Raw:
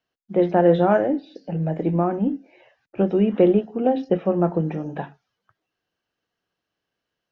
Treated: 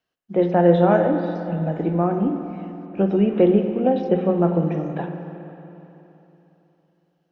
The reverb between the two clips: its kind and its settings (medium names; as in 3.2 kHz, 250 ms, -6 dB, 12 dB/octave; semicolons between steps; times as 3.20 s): spring tank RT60 3.3 s, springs 46/57 ms, chirp 75 ms, DRR 6 dB